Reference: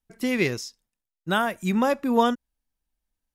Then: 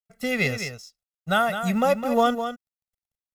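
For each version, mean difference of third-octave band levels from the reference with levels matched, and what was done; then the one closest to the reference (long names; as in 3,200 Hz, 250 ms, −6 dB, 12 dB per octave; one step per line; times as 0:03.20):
5.5 dB: mu-law and A-law mismatch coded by A
comb filter 1.5 ms, depth 99%
single-tap delay 208 ms −9 dB
level −1 dB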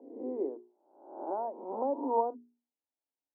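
15.0 dB: peak hold with a rise ahead of every peak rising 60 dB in 0.74 s
Chebyshev band-pass filter 270–930 Hz, order 4
mains-hum notches 60/120/180/240/300/360/420 Hz
level −8 dB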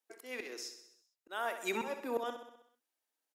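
9.0 dB: Butterworth high-pass 320 Hz 36 dB per octave
volume swells 582 ms
repeating echo 64 ms, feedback 59%, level −9.5 dB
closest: first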